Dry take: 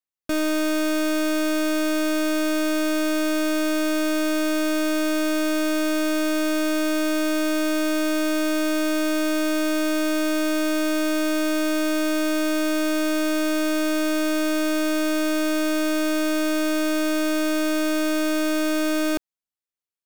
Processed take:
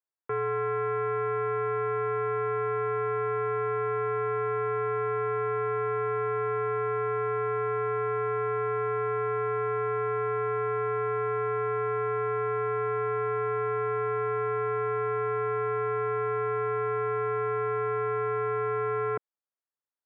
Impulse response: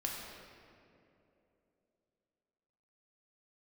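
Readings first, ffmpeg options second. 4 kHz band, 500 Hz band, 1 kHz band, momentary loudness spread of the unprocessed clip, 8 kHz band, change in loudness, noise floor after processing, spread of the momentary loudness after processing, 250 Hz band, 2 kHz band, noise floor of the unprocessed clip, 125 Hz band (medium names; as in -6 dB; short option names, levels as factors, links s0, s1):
under -30 dB, -1.5 dB, +3.0 dB, 0 LU, under -40 dB, -6.0 dB, under -85 dBFS, 0 LU, under -30 dB, -10.5 dB, under -85 dBFS, no reading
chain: -af "highpass=f=520:t=q:w=0.5412,highpass=f=520:t=q:w=1.307,lowpass=f=2000:t=q:w=0.5176,lowpass=f=2000:t=q:w=0.7071,lowpass=f=2000:t=q:w=1.932,afreqshift=-190"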